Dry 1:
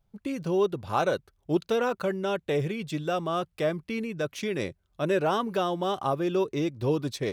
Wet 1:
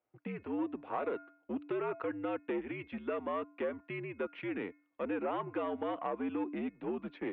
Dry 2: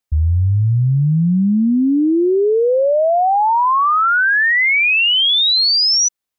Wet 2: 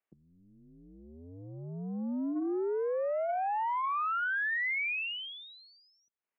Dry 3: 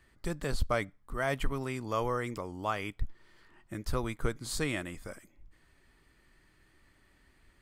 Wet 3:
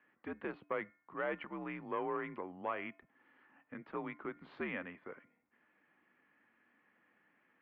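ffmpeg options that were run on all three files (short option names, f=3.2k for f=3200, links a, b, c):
-af "bandreject=f=374.4:t=h:w=4,bandreject=f=748.8:t=h:w=4,bandreject=f=1.1232k:t=h:w=4,bandreject=f=1.4976k:t=h:w=4,bandreject=f=1.872k:t=h:w=4,bandreject=f=2.2464k:t=h:w=4,bandreject=f=2.6208k:t=h:w=4,acompressor=threshold=-26dB:ratio=10,aeval=exprs='(tanh(14.1*val(0)+0.3)-tanh(0.3))/14.1':c=same,highpass=f=310:t=q:w=0.5412,highpass=f=310:t=q:w=1.307,lowpass=f=2.7k:t=q:w=0.5176,lowpass=f=2.7k:t=q:w=0.7071,lowpass=f=2.7k:t=q:w=1.932,afreqshift=-82,volume=-2.5dB"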